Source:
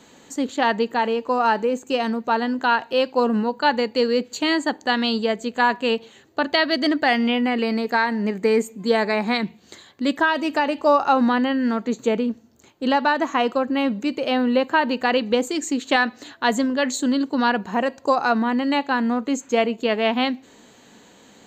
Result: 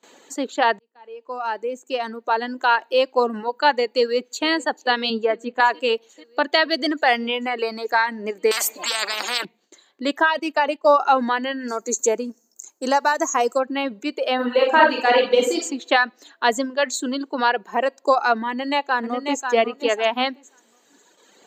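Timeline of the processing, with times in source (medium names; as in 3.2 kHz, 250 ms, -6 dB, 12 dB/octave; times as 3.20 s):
0.79–2.62 s: fade in
3.97–4.47 s: echo throw 440 ms, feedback 80%, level -15 dB
5.10–5.60 s: tone controls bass +10 dB, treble -11 dB
8.51–9.45 s: spectrum-flattening compressor 10:1
10.39–10.96 s: gate -29 dBFS, range -11 dB
11.68–13.60 s: resonant high shelf 4.7 kHz +12 dB, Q 3
14.35–15.57 s: reverb throw, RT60 0.83 s, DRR -2.5 dB
18.49–19.51 s: echo throw 540 ms, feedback 25%, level -5.5 dB
whole clip: gate with hold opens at -41 dBFS; Chebyshev high-pass 410 Hz, order 2; reverb removal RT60 1.7 s; trim +2.5 dB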